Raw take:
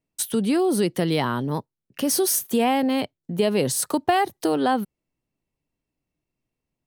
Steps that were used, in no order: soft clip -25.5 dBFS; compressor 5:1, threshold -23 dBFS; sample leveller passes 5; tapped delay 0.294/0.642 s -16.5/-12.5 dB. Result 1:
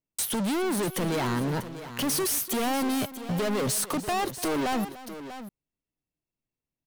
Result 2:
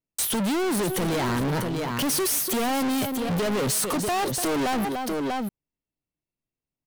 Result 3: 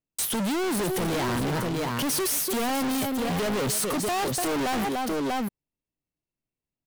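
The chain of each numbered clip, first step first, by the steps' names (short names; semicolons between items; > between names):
sample leveller > compressor > soft clip > tapped delay; compressor > soft clip > tapped delay > sample leveller; tapped delay > sample leveller > soft clip > compressor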